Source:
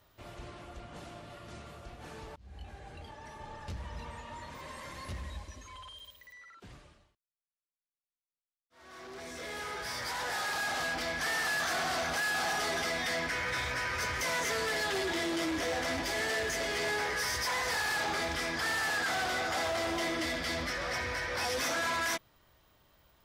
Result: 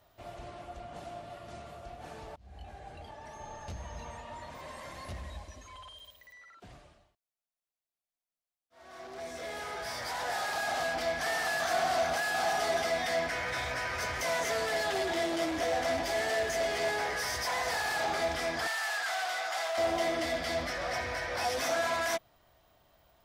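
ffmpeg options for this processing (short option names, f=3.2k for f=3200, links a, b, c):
-filter_complex "[0:a]asettb=1/sr,asplit=3[a][b][c];[a]atrim=end=3.334[d];[b]atrim=start=3.33:end=4.17,asetpts=PTS-STARTPTS,afade=t=in:d=0.004:c=qsin,afade=t=out:st=0.836:d=0.004:c=qsin,aeval=exprs='val(0)+0.00158*sin(2*PI*6400*n/s)':c=same[e];[c]atrim=start=4.166[f];[d][e]acrossfade=d=0.004:c1=hsin:c2=qsin[g];[g][f]acrossfade=d=0.004:c1=qsin:c2=hsin,asettb=1/sr,asplit=3[h][i][j];[h]atrim=end=18.674[k];[i]atrim=start=18.67:end=19.78,asetpts=PTS-STARTPTS,afade=t=in:d=0.004:c=qsin,afade=t=out:st=1.106:d=0.004:c=qsin,highpass=970[l];[j]atrim=start=19.776[m];[k][l]acrossfade=d=0.004:c1=hsin:c2=qsin[n];[n][m]acrossfade=d=0.004:c1=qsin:c2=hsin,equalizer=f=690:w=3.6:g=10.5,volume=-1.5dB"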